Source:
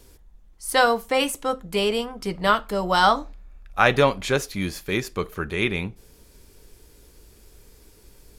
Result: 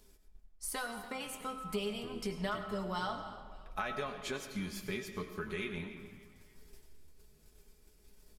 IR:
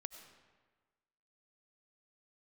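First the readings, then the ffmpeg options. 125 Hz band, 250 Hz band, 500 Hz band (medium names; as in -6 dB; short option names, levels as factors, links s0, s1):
-14.5 dB, -12.5 dB, -17.5 dB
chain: -filter_complex "[0:a]flanger=delay=9.2:depth=4:regen=53:speed=1.1:shape=triangular,acompressor=threshold=0.0126:ratio=5,agate=range=0.0224:threshold=0.00562:ratio=3:detection=peak,bandreject=f=460:w=12,aecho=1:1:4.7:0.61,asplit=5[s0][s1][s2][s3][s4];[s1]adelay=289,afreqshift=-79,volume=0.141[s5];[s2]adelay=578,afreqshift=-158,volume=0.061[s6];[s3]adelay=867,afreqshift=-237,volume=0.026[s7];[s4]adelay=1156,afreqshift=-316,volume=0.0112[s8];[s0][s5][s6][s7][s8]amix=inputs=5:normalize=0[s9];[1:a]atrim=start_sample=2205[s10];[s9][s10]afir=irnorm=-1:irlink=0,acompressor=mode=upward:threshold=0.00126:ratio=2.5,volume=1.58"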